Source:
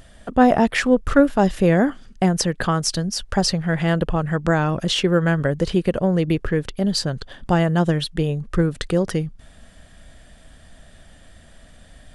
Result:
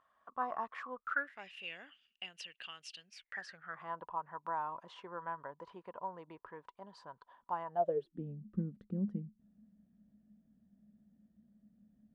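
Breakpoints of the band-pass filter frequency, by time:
band-pass filter, Q 16
0.93 s 1.1 kHz
1.57 s 2.8 kHz
3.01 s 2.8 kHz
3.92 s 980 Hz
7.67 s 980 Hz
8.26 s 210 Hz

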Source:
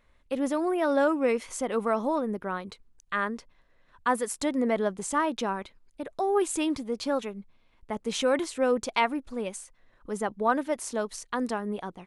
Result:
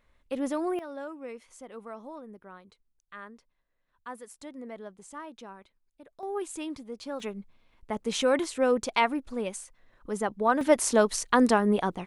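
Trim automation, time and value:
-2.5 dB
from 0.79 s -15.5 dB
from 6.23 s -8.5 dB
from 7.20 s +0.5 dB
from 10.61 s +8.5 dB

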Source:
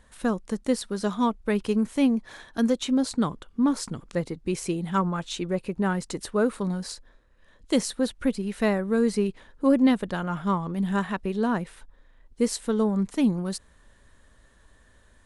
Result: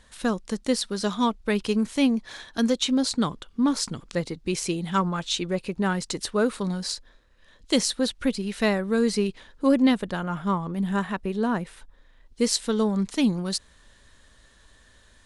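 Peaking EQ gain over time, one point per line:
peaking EQ 4.4 kHz 1.9 oct
9.74 s +8.5 dB
10.22 s +0.5 dB
11.49 s +0.5 dB
12.43 s +10 dB

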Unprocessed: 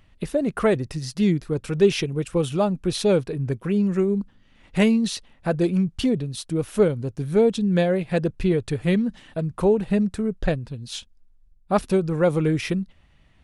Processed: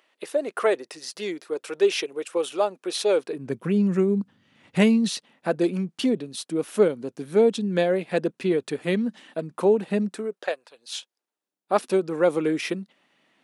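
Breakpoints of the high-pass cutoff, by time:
high-pass 24 dB/octave
3.14 s 380 Hz
3.76 s 110 Hz
4.87 s 110 Hz
5.53 s 220 Hz
10.07 s 220 Hz
10.61 s 610 Hz
11.97 s 240 Hz

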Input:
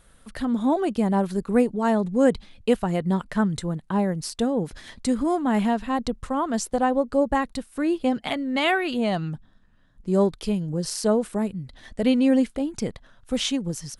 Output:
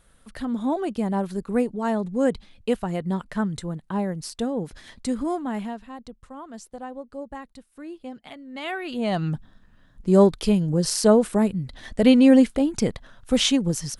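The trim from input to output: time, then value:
5.31 s -3 dB
5.96 s -14.5 dB
8.43 s -14.5 dB
8.90 s -5 dB
9.32 s +5 dB

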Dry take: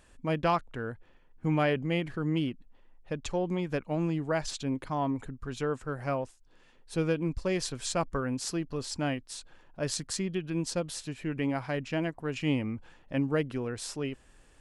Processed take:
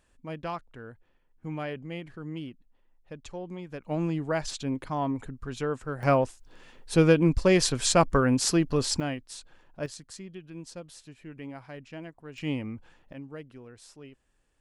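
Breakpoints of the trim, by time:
-8 dB
from 3.84 s +1 dB
from 6.03 s +9 dB
from 9.00 s -1 dB
from 9.86 s -10.5 dB
from 12.38 s -2.5 dB
from 13.13 s -13.5 dB

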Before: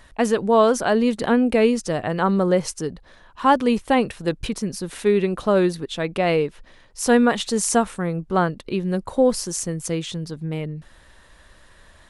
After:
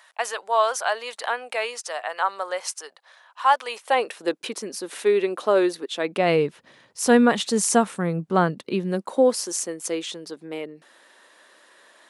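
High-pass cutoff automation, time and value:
high-pass 24 dB/octave
3.68 s 700 Hz
4.23 s 310 Hz
5.92 s 310 Hz
6.46 s 120 Hz
8.42 s 120 Hz
9.38 s 300 Hz

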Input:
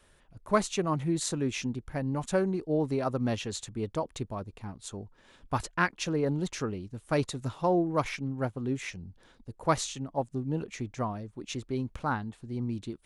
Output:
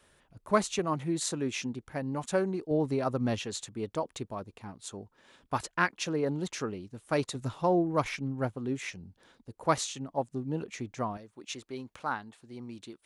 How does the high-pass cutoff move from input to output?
high-pass 6 dB/octave
90 Hz
from 0.79 s 210 Hz
from 2.71 s 52 Hz
from 3.40 s 200 Hz
from 7.35 s 51 Hz
from 8.54 s 160 Hz
from 11.17 s 650 Hz

